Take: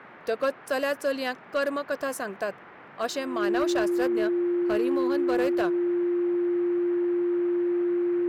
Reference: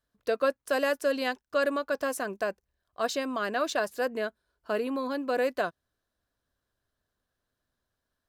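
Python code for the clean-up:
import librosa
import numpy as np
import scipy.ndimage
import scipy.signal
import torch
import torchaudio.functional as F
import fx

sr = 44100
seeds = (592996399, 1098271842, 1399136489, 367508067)

y = fx.fix_declip(x, sr, threshold_db=-19.0)
y = fx.notch(y, sr, hz=350.0, q=30.0)
y = fx.noise_reduce(y, sr, print_start_s=2.5, print_end_s=3.0, reduce_db=30.0)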